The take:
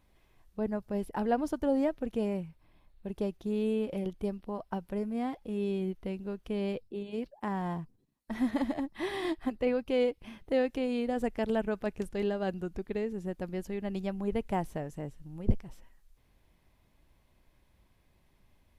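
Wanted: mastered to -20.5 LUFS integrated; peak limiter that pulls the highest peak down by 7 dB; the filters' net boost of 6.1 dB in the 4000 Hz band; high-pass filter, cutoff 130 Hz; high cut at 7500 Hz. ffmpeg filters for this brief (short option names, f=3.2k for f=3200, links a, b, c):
-af "highpass=130,lowpass=7.5k,equalizer=f=4k:t=o:g=8.5,volume=14.5dB,alimiter=limit=-9dB:level=0:latency=1"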